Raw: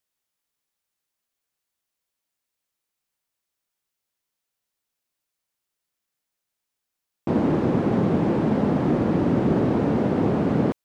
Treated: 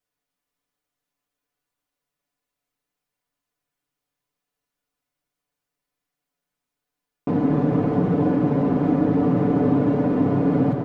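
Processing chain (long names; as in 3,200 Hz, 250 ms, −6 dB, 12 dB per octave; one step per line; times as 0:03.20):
high-shelf EQ 2,100 Hz −9.5 dB
echo with shifted repeats 300 ms, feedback 62%, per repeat +76 Hz, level −9 dB
rectangular room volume 2,500 cubic metres, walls furnished, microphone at 1.9 metres
downward compressor 1.5 to 1, threshold −27 dBFS, peak gain reduction 5.5 dB
comb filter 6.9 ms, depth 78%
level +1 dB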